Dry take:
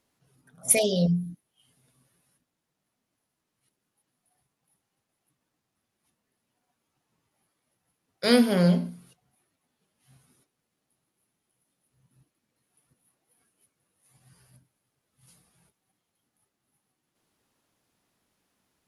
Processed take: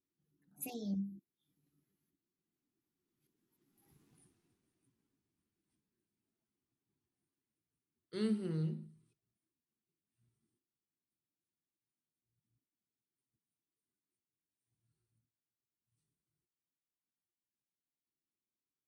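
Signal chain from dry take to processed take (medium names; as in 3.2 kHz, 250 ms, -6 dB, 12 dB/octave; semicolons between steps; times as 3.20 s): Doppler pass-by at 4.07 s, 39 m/s, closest 6.2 m; resonant low shelf 450 Hz +7.5 dB, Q 3; trim +4 dB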